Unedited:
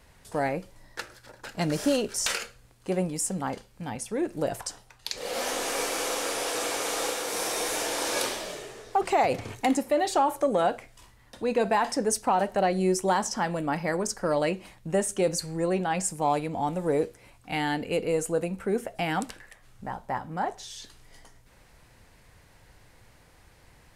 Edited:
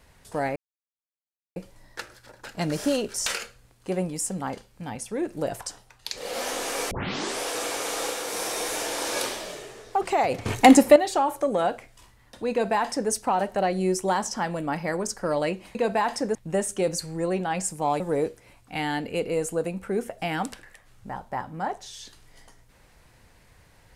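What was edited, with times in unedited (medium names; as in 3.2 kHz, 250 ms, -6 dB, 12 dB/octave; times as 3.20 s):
0.56 s: insert silence 1.00 s
5.91 s: tape start 0.49 s
9.46–9.96 s: gain +11.5 dB
11.51–12.11 s: copy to 14.75 s
16.40–16.77 s: delete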